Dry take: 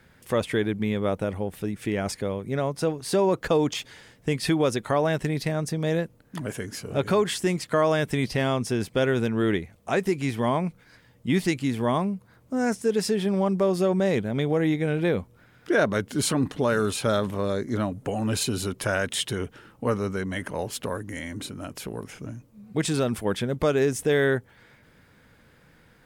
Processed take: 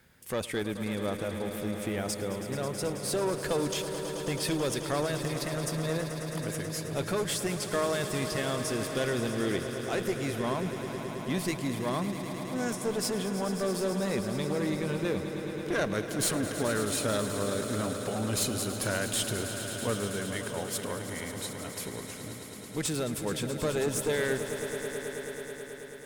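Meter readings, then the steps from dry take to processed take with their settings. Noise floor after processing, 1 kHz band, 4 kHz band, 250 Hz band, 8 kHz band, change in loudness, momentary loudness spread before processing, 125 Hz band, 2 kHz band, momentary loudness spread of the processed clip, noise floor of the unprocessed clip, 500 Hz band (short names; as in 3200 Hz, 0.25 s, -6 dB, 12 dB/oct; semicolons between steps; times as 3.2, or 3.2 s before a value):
-42 dBFS, -6.0 dB, -2.0 dB, -6.0 dB, +1.5 dB, -5.5 dB, 11 LU, -6.0 dB, -4.5 dB, 7 LU, -57 dBFS, -6.0 dB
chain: high shelf 5300 Hz +10.5 dB; one-sided clip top -22.5 dBFS; swelling echo 0.108 s, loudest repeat 5, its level -12.5 dB; gain -6.5 dB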